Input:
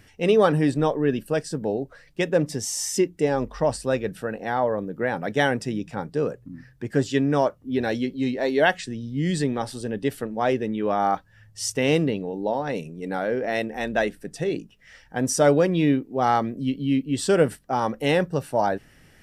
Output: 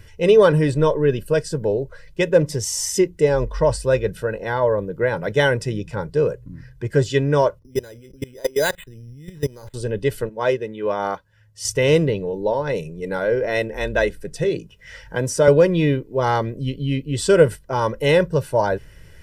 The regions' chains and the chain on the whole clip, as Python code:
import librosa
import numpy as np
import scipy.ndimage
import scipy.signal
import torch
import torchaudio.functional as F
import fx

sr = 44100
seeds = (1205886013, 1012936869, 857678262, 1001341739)

y = fx.chain(x, sr, fx.lowpass(hz=2800.0, slope=24),
    fx.level_steps(step_db=22),
    fx.resample_bad(factor=8, down='none', up='hold'), at=(7.59, 9.74))
y = fx.chain(y, sr, fx.highpass(hz=200.0, slope=6),
    fx.upward_expand(threshold_db=-32.0, expansion=1.5), at=(10.29, 11.65))
y = fx.chain(y, sr, fx.highpass(hz=84.0, slope=6),
    fx.band_squash(depth_pct=40), at=(14.44, 15.48))
y = fx.low_shelf(y, sr, hz=120.0, db=10.0)
y = fx.notch(y, sr, hz=770.0, q=12.0)
y = y + 0.65 * np.pad(y, (int(2.0 * sr / 1000.0), 0))[:len(y)]
y = y * 10.0 ** (2.0 / 20.0)